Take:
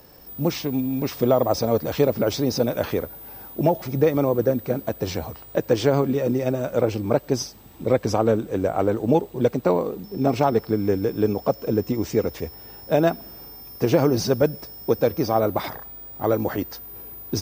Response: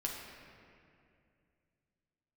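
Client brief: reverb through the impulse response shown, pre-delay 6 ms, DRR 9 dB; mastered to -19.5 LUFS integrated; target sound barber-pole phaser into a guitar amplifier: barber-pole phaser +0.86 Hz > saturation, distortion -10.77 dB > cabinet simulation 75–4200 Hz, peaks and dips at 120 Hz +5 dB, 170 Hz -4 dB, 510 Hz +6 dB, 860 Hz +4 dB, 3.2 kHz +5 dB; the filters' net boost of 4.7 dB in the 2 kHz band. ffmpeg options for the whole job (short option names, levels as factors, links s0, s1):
-filter_complex "[0:a]equalizer=f=2000:t=o:g=5.5,asplit=2[s0][s1];[1:a]atrim=start_sample=2205,adelay=6[s2];[s1][s2]afir=irnorm=-1:irlink=0,volume=0.282[s3];[s0][s3]amix=inputs=2:normalize=0,asplit=2[s4][s5];[s5]afreqshift=0.86[s6];[s4][s6]amix=inputs=2:normalize=1,asoftclip=threshold=0.119,highpass=75,equalizer=f=120:t=q:w=4:g=5,equalizer=f=170:t=q:w=4:g=-4,equalizer=f=510:t=q:w=4:g=6,equalizer=f=860:t=q:w=4:g=4,equalizer=f=3200:t=q:w=4:g=5,lowpass=f=4200:w=0.5412,lowpass=f=4200:w=1.3066,volume=2"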